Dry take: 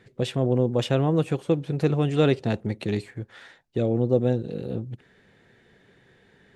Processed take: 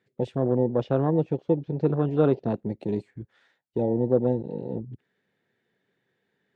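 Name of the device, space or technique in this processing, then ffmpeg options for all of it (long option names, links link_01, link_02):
over-cleaned archive recording: -filter_complex "[0:a]highpass=140,lowpass=7800,afwtdn=0.0355,asettb=1/sr,asplit=3[link_01][link_02][link_03];[link_01]atrim=end=0.524[link_04];[link_02]atrim=start=0.52:end=2.55,asetpts=PTS-STARTPTS,afade=type=in:duration=0.004:curve=qsin,afade=type=out:start_time=2.026:duration=0.004:curve=qsin,lowpass=frequency=5600:width=0.5412,lowpass=frequency=5600:width=1.3066[link_05];[link_03]atrim=start=2.546[link_06];[link_04][link_05]acrossfade=duration=0.004:curve1=hsin:curve2=qsin[link_07];[link_07][link_06]acrossfade=duration=0.004:curve1=qsin:curve2=hsin"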